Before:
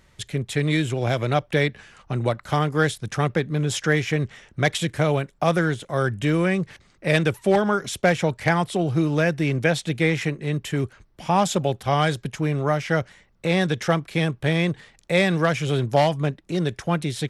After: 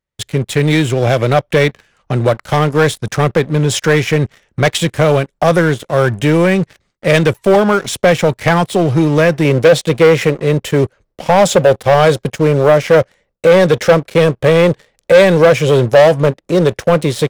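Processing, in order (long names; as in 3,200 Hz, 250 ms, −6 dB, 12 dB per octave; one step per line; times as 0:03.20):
noise gate with hold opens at −46 dBFS
parametric band 520 Hz +4.5 dB 0.65 octaves, from 0:09.45 +13.5 dB
leveller curve on the samples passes 3
level −1.5 dB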